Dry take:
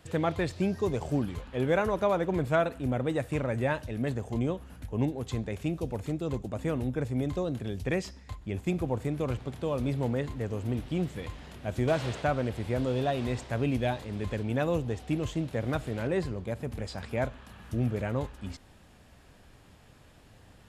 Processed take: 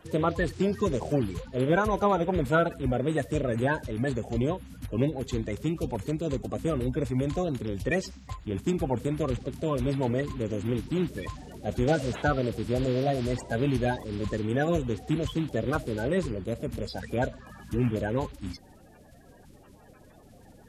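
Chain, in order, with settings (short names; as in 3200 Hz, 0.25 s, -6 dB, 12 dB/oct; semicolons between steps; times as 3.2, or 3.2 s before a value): bin magnitudes rounded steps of 30 dB; gain +3 dB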